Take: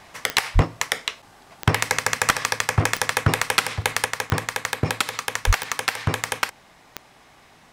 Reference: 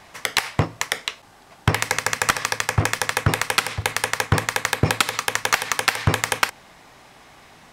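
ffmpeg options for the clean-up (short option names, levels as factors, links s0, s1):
-filter_complex "[0:a]adeclick=t=4,asplit=3[s0][s1][s2];[s0]afade=t=out:st=0.54:d=0.02[s3];[s1]highpass=f=140:w=0.5412,highpass=f=140:w=1.3066,afade=t=in:st=0.54:d=0.02,afade=t=out:st=0.66:d=0.02[s4];[s2]afade=t=in:st=0.66:d=0.02[s5];[s3][s4][s5]amix=inputs=3:normalize=0,asplit=3[s6][s7][s8];[s6]afade=t=out:st=5.46:d=0.02[s9];[s7]highpass=f=140:w=0.5412,highpass=f=140:w=1.3066,afade=t=in:st=5.46:d=0.02,afade=t=out:st=5.58:d=0.02[s10];[s8]afade=t=in:st=5.58:d=0.02[s11];[s9][s10][s11]amix=inputs=3:normalize=0,asetnsamples=n=441:p=0,asendcmd='4.05 volume volume 4dB',volume=1"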